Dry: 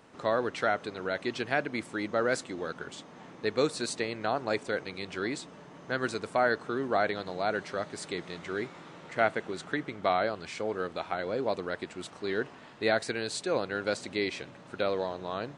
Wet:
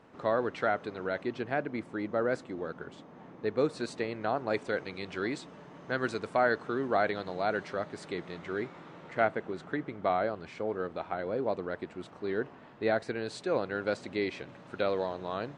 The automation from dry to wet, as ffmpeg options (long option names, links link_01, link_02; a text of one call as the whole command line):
ffmpeg -i in.wav -af "asetnsamples=nb_out_samples=441:pad=0,asendcmd='1.23 lowpass f 1000;3.7 lowpass f 1700;4.54 lowpass f 3400;7.73 lowpass f 2100;9.25 lowpass f 1200;13.27 lowpass f 2000;14.49 lowpass f 3700',lowpass=frequency=1900:poles=1" out.wav